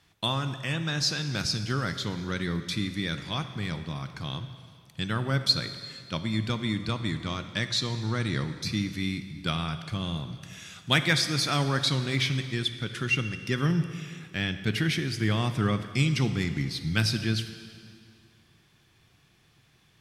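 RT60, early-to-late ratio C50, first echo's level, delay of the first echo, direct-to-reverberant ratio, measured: 2.2 s, 10.0 dB, none, none, 9.0 dB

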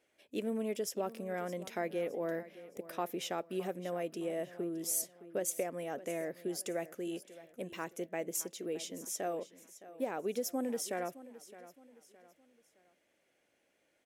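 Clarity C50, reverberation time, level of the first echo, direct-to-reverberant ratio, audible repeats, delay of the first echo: none, none, -16.5 dB, none, 3, 0.615 s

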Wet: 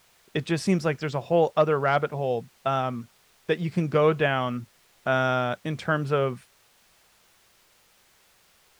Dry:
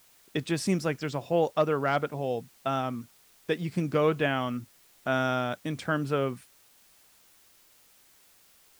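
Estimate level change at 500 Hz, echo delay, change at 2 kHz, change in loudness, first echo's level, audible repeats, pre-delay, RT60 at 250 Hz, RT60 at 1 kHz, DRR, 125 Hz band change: +4.0 dB, none, +4.0 dB, +3.5 dB, none, none, none, none, none, none, +4.5 dB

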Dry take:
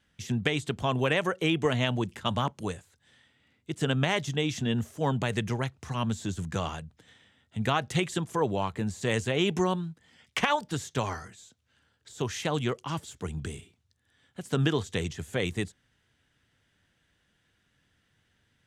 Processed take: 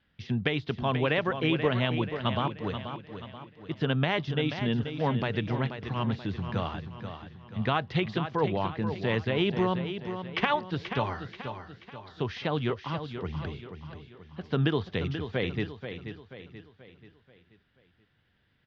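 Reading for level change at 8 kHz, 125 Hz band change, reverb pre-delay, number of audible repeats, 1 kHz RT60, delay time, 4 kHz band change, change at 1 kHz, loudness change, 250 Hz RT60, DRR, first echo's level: under -20 dB, +0.5 dB, none, 4, none, 0.483 s, -1.5 dB, 0.0 dB, -0.5 dB, none, none, -9.0 dB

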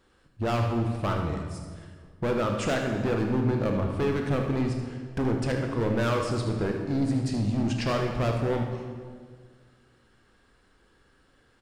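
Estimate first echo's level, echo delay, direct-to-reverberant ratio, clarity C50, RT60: -10.5 dB, 77 ms, 2.0 dB, 3.5 dB, 1.8 s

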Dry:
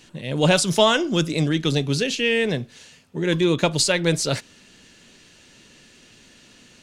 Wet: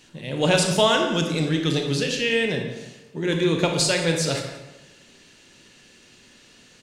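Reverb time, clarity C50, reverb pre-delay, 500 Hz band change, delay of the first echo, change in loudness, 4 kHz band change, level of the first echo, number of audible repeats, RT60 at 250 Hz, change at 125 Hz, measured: 1.1 s, 4.5 dB, 25 ms, -1.0 dB, 0.175 s, -1.5 dB, -1.0 dB, -15.0 dB, 1, 1.1 s, -2.0 dB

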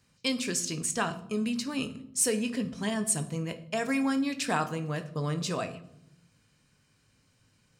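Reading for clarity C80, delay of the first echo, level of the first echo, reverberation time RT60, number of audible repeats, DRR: 17.5 dB, none, none, 0.80 s, none, 8.0 dB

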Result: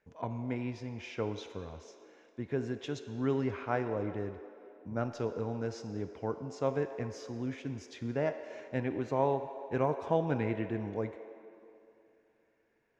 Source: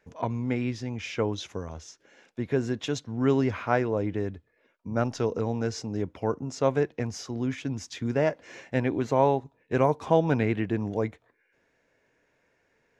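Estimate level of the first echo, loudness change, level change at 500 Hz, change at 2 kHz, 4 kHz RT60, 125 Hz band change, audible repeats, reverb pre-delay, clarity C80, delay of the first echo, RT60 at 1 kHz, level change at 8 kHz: none, -7.0 dB, -6.5 dB, -8.0 dB, 2.0 s, -7.5 dB, none, 16 ms, 9.5 dB, none, 2.7 s, -12.5 dB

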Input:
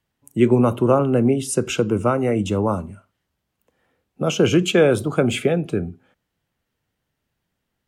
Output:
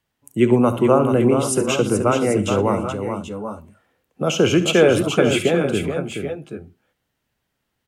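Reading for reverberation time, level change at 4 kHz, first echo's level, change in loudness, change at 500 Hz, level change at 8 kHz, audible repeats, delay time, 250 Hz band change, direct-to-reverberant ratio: none, +3.5 dB, -13.0 dB, +1.0 dB, +2.0 dB, +3.5 dB, 4, 69 ms, +1.0 dB, none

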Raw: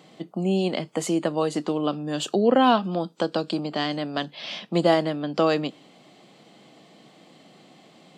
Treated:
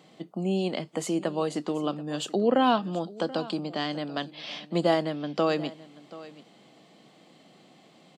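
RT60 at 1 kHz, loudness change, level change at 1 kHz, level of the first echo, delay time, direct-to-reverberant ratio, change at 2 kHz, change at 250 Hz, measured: none, -4.0 dB, -4.0 dB, -18.5 dB, 0.732 s, none, -4.0 dB, -4.0 dB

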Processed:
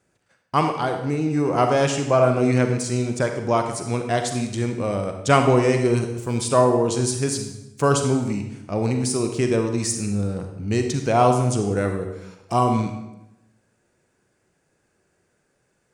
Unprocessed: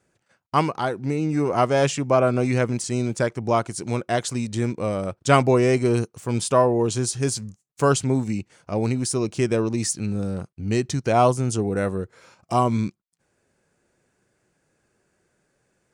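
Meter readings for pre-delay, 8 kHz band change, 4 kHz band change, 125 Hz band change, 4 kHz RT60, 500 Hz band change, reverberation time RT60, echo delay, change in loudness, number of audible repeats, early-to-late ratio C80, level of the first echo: 35 ms, +1.0 dB, +1.0 dB, +1.0 dB, 0.75 s, +1.0 dB, 0.90 s, none, +1.0 dB, none, 8.5 dB, none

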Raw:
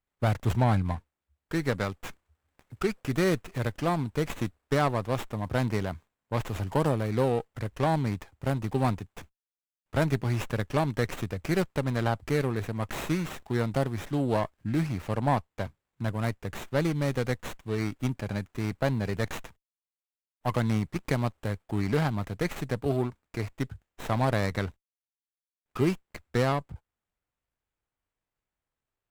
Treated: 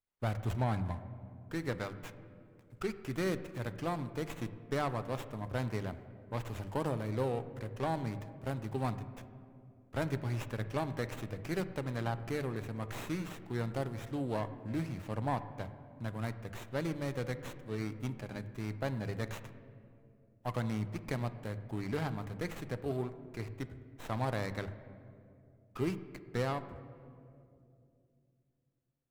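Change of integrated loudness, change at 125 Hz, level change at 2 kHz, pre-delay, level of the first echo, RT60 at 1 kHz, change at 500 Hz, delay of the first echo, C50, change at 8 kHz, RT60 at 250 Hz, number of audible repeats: -8.5 dB, -8.5 dB, -8.0 dB, 10 ms, none, 2.1 s, -8.0 dB, none, 13.0 dB, -8.5 dB, 3.5 s, none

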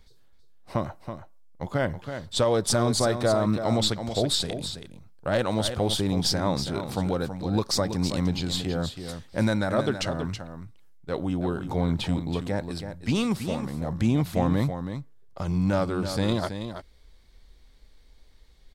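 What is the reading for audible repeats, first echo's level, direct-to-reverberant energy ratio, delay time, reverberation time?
1, -9.0 dB, none, 0.326 s, none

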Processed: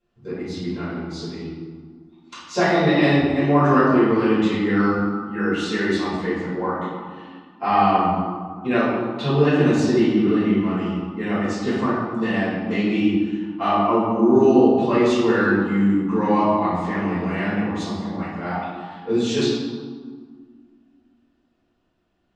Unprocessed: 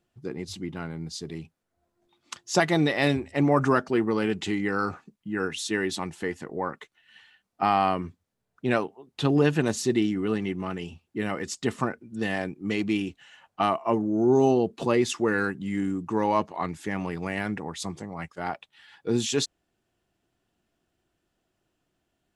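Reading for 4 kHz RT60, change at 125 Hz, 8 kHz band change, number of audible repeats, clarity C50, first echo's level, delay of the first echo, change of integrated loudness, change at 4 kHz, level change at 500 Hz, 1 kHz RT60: 1.0 s, +6.0 dB, n/a, none, -1.5 dB, none, none, +6.5 dB, +3.0 dB, +6.0 dB, 1.8 s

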